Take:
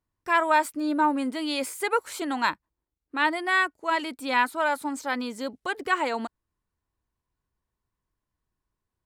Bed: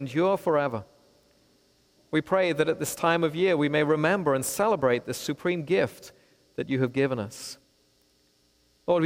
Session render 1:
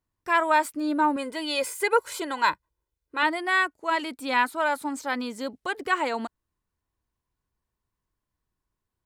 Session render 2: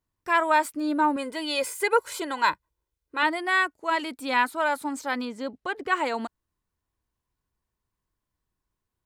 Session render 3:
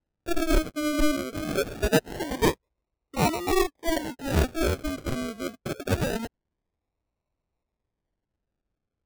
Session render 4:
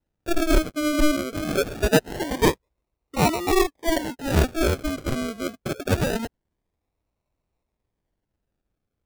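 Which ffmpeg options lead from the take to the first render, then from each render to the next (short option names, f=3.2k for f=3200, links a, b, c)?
-filter_complex "[0:a]asettb=1/sr,asplit=3[a][b][c];[a]atrim=end=1.164[d];[b]atrim=start=1.16:end=3.23,asetpts=PTS-STARTPTS,afade=t=in:d=0.004:c=qsin,afade=t=out:st=2.066:d=0.004:c=qsin,aecho=1:1:2:0.65,atrim=end_sample=91287[e];[c]atrim=start=3.226[f];[d][e]acrossfade=d=0.004:c1=hsin:c2=qsin[g];[g][f]acrossfade=d=0.004:c1=qsin:c2=hsin"
-filter_complex "[0:a]asettb=1/sr,asplit=3[a][b][c];[a]atrim=end=5.254[d];[b]atrim=start=5.25:end=5.92,asetpts=PTS-STARTPTS,afade=t=in:d=0.004:c=qsin,afade=t=out:st=0.666:d=0.004:c=qsin,aemphasis=mode=reproduction:type=50kf[e];[c]atrim=start=5.916[f];[d][e]acrossfade=d=0.004:c1=hsin:c2=qsin[g];[g][f]acrossfade=d=0.004:c1=qsin:c2=hsin"
-af "acrusher=samples=38:mix=1:aa=0.000001:lfo=1:lforange=22.8:lforate=0.24"
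-af "volume=3.5dB"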